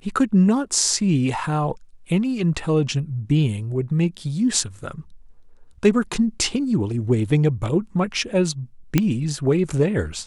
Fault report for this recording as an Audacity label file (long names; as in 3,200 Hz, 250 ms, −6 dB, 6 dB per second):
8.980000	8.980000	click −4 dBFS